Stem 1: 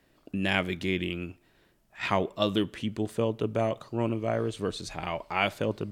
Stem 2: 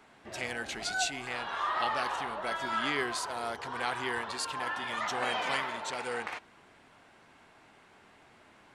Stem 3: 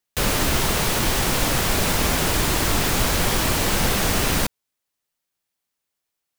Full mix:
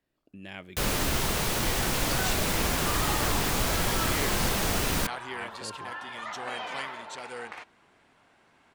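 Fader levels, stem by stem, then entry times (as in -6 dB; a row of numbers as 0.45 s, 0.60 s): -15.5 dB, -3.5 dB, -6.5 dB; 0.00 s, 1.25 s, 0.60 s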